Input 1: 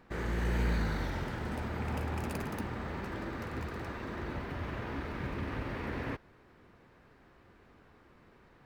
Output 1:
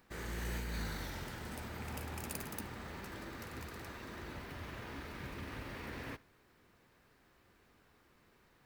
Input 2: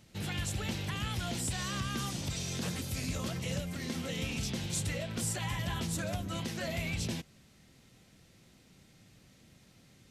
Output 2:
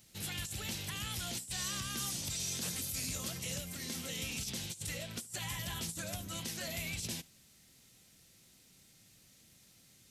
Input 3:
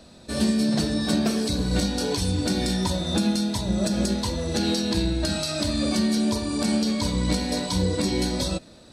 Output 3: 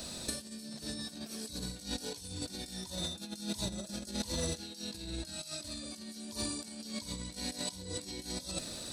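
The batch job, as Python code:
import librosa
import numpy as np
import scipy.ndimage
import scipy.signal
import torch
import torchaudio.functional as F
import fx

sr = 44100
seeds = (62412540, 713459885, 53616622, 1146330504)

p1 = F.preemphasis(torch.from_numpy(x), 0.8).numpy()
p2 = fx.over_compress(p1, sr, threshold_db=-43.0, ratio=-0.5)
p3 = p2 + fx.echo_single(p2, sr, ms=72, db=-23.0, dry=0)
y = p3 * librosa.db_to_amplitude(5.0)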